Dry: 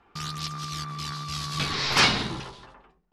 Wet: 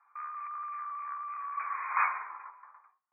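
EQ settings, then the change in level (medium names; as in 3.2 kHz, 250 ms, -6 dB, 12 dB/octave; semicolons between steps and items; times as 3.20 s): ladder high-pass 1 kHz, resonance 70%; brick-wall FIR low-pass 2.5 kHz; 0.0 dB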